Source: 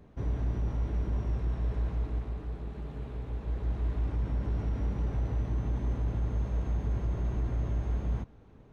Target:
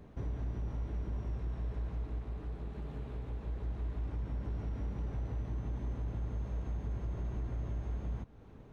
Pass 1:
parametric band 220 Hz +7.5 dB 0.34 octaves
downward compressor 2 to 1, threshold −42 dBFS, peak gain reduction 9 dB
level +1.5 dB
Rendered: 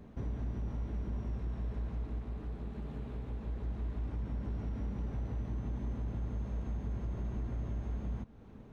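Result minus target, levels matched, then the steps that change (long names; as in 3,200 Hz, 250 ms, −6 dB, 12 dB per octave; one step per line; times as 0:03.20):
250 Hz band +3.0 dB
remove: parametric band 220 Hz +7.5 dB 0.34 octaves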